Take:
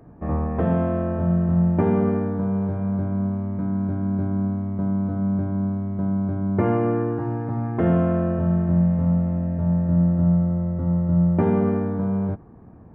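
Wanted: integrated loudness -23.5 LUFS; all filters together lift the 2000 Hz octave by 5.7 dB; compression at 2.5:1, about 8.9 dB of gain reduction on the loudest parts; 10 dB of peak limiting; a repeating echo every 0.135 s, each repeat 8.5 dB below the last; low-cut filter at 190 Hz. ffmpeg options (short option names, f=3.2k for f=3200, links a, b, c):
-af "highpass=190,equalizer=f=2k:t=o:g=7.5,acompressor=threshold=-31dB:ratio=2.5,alimiter=level_in=3.5dB:limit=-24dB:level=0:latency=1,volume=-3.5dB,aecho=1:1:135|270|405|540:0.376|0.143|0.0543|0.0206,volume=11.5dB"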